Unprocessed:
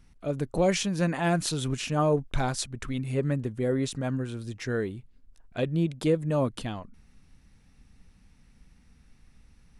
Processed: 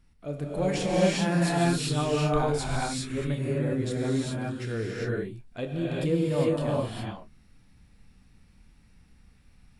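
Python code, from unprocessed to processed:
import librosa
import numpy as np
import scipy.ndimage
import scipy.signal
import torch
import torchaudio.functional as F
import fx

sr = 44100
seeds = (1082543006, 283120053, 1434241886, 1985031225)

y = fx.notch(x, sr, hz=6100.0, q=10.0)
y = fx.doubler(y, sr, ms=27.0, db=-11.5)
y = fx.rev_gated(y, sr, seeds[0], gate_ms=430, shape='rising', drr_db=-5.0)
y = y * librosa.db_to_amplitude(-5.5)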